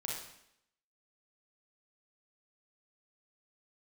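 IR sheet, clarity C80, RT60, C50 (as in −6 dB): 5.0 dB, 0.75 s, 0.5 dB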